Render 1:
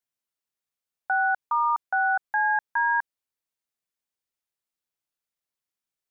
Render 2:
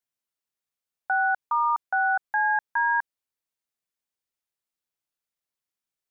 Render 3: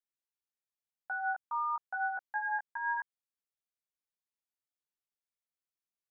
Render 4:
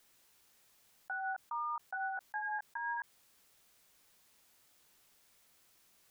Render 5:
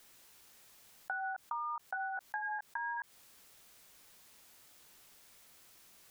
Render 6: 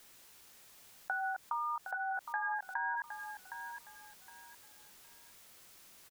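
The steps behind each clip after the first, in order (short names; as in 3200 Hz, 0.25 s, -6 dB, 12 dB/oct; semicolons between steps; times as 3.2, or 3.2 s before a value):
nothing audible
chorus 0.9 Hz, delay 15 ms, depth 2.4 ms; gain -8 dB
fast leveller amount 50%; gain -5.5 dB
compressor 6:1, threshold -43 dBFS, peak gain reduction 8.5 dB; gain +7 dB
feedback echo 0.764 s, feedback 26%, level -9 dB; gain +2 dB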